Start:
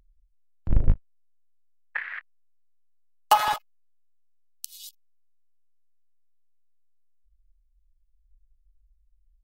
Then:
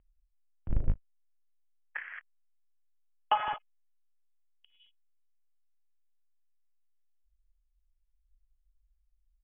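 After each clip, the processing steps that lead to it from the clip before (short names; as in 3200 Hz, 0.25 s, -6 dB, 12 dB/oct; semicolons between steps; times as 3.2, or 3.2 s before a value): Chebyshev low-pass 3300 Hz, order 10; gain -7.5 dB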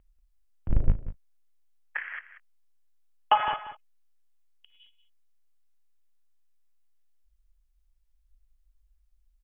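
echo 0.186 s -13.5 dB; gain +5.5 dB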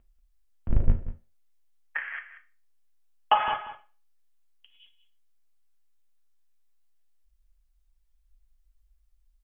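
reverb RT60 0.35 s, pre-delay 4 ms, DRR 4.5 dB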